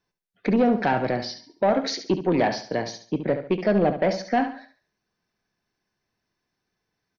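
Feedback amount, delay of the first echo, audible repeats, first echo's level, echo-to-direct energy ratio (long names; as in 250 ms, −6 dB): 34%, 70 ms, 3, −10.0 dB, −9.5 dB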